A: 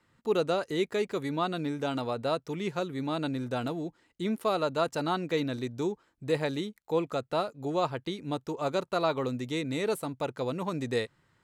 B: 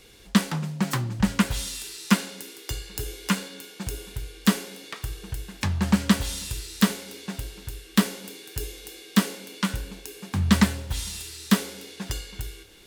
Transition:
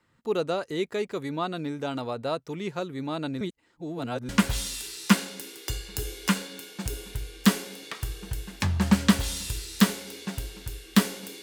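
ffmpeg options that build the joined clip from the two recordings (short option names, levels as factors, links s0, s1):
-filter_complex "[0:a]apad=whole_dur=11.42,atrim=end=11.42,asplit=2[s0][s1];[s0]atrim=end=3.412[s2];[s1]atrim=start=3.408:end=4.292,asetpts=PTS-STARTPTS,areverse[s3];[1:a]atrim=start=1.298:end=8.43[s4];[s2][s3]acrossfade=d=0.004:c1=hsin:c2=hsin[s5];[s5][s4]acrossfade=d=0.004:c1=hsin:c2=hsin"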